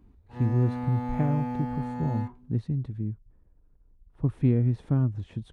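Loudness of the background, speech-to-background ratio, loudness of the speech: -34.0 LUFS, 5.5 dB, -28.5 LUFS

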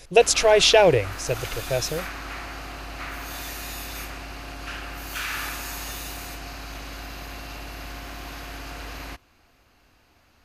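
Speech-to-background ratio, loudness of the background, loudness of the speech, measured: 15.5 dB, -34.5 LUFS, -19.0 LUFS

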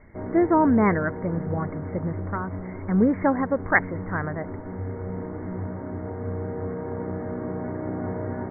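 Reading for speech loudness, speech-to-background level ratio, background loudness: -24.5 LUFS, 8.5 dB, -33.0 LUFS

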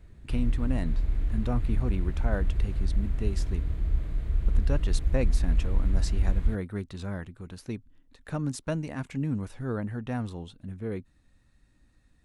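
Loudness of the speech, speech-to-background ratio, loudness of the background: -35.0 LUFS, -4.5 dB, -30.5 LUFS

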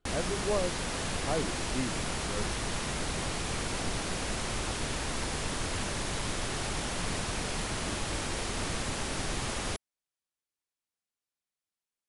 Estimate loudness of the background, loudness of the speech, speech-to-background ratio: -33.5 LUFS, -37.0 LUFS, -3.5 dB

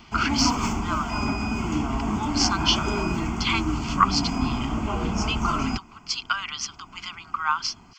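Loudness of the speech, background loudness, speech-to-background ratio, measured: -27.0 LUFS, -27.0 LUFS, 0.0 dB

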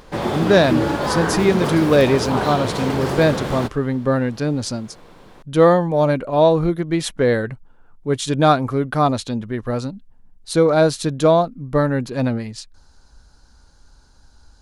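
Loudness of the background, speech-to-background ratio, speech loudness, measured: -23.0 LUFS, 4.0 dB, -19.0 LUFS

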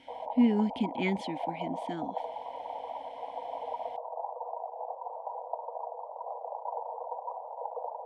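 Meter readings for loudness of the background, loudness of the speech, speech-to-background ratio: -39.0 LUFS, -31.0 LUFS, 8.0 dB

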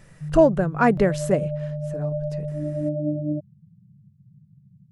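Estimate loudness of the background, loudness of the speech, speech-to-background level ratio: -29.0 LUFS, -20.5 LUFS, 8.5 dB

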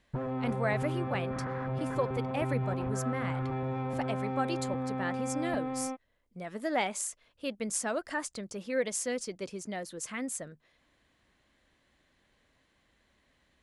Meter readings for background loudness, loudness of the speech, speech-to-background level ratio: -35.0 LUFS, -35.5 LUFS, -0.5 dB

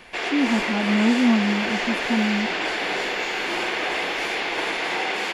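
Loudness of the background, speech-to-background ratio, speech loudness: -24.5 LUFS, 1.5 dB, -23.0 LUFS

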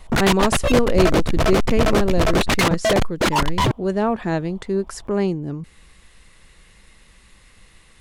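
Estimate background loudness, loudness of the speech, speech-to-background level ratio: -20.5 LUFS, -23.0 LUFS, -2.5 dB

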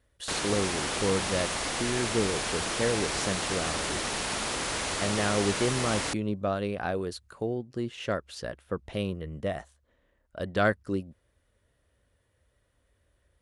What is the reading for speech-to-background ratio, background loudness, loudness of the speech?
-2.0 dB, -30.0 LUFS, -32.0 LUFS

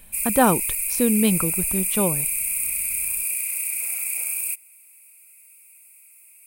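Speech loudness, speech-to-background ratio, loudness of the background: -23.0 LUFS, -0.5 dB, -22.5 LUFS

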